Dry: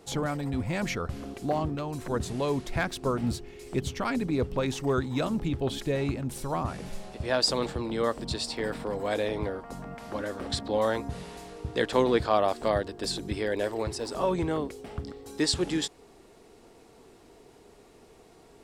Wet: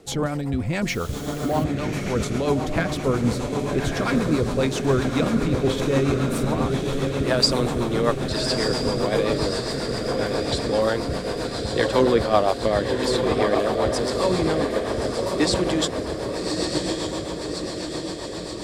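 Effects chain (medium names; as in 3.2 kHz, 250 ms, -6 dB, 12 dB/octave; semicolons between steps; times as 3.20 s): echo that smears into a reverb 1197 ms, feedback 64%, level -3 dB; rotary cabinet horn 7.5 Hz; 0.88–1.64 s: word length cut 8-bit, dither none; trim +7 dB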